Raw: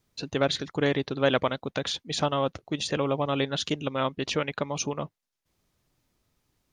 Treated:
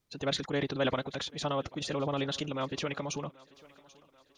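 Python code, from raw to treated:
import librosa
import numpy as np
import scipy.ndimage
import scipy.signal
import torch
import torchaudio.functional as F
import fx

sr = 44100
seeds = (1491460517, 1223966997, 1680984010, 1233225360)

y = fx.stretch_vocoder(x, sr, factor=0.65)
y = fx.transient(y, sr, attack_db=-2, sustain_db=7)
y = fx.echo_thinned(y, sr, ms=786, feedback_pct=53, hz=230.0, wet_db=-22.5)
y = F.gain(torch.from_numpy(y), -5.0).numpy()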